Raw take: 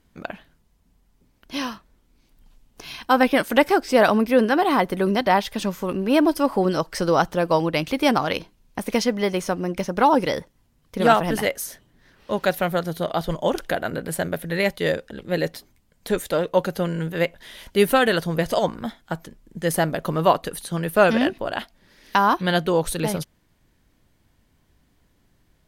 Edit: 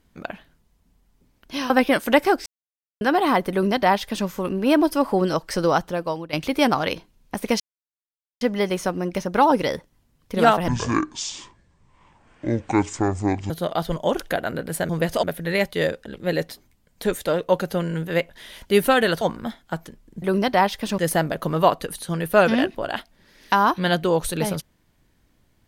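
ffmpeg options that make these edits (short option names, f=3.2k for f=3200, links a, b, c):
-filter_complex "[0:a]asplit=13[a][b][c][d][e][f][g][h][i][j][k][l][m];[a]atrim=end=1.702[n];[b]atrim=start=3.138:end=3.9,asetpts=PTS-STARTPTS,afade=t=out:st=0.758:d=0.004:c=hsin[o];[c]atrim=start=3.9:end=4.45,asetpts=PTS-STARTPTS,volume=0[p];[d]atrim=start=4.45:end=7.77,asetpts=PTS-STARTPTS,afade=t=in:d=0.004:c=hsin,afade=t=out:st=2.63:d=0.69:silence=0.16788[q];[e]atrim=start=7.77:end=9.04,asetpts=PTS-STARTPTS,afade=t=in:d=0.004:c=hsin:silence=0.16788,afade=t=out:st=1.266:d=0.004:c=hsin,apad=pad_dur=0.81[r];[f]atrim=start=9.04:end=11.314,asetpts=PTS-STARTPTS,afade=t=in:d=0.004:c=hsin[s];[g]atrim=start=11.31:end=12.89,asetpts=PTS-STARTPTS,asetrate=24696,aresample=44100[t];[h]atrim=start=12.886:end=14.282[u];[i]atrim=start=18.258:end=18.602[v];[j]atrim=start=14.278:end=18.262[w];[k]atrim=start=18.598:end=19.612[x];[l]atrim=start=4.948:end=5.712[y];[m]atrim=start=19.608[z];[o][p][q][r][s]concat=n=5:v=0:a=1[aa];[n][aa]acrossfade=d=0.004:c1=hsin:c2=hsin[ab];[ab][t]acrossfade=d=0.004:c1=hsin:c2=hsin[ac];[ac][u]acrossfade=d=0.004:c1=hsin:c2=hsin[ad];[ad][v]acrossfade=d=0.004:c1=hsin:c2=hsin[ae];[ae][w]acrossfade=d=0.004:c1=hsin:c2=hsin[af];[af][x]acrossfade=d=0.004:c1=hsin:c2=hsin[ag];[ag][y]acrossfade=d=0.004:c1=hsin:c2=hsin[ah];[ah][z]acrossfade=d=0.004:c1=hsin:c2=hsin"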